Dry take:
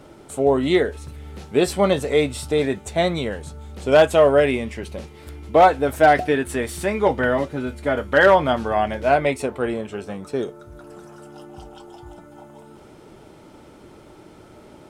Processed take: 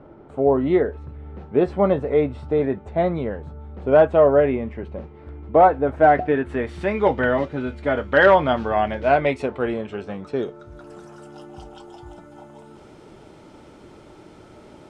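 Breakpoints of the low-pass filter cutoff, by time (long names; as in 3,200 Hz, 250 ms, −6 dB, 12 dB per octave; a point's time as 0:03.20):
0:05.87 1,300 Hz
0:06.66 2,100 Hz
0:07.00 3,700 Hz
0:10.44 3,700 Hz
0:10.93 8,300 Hz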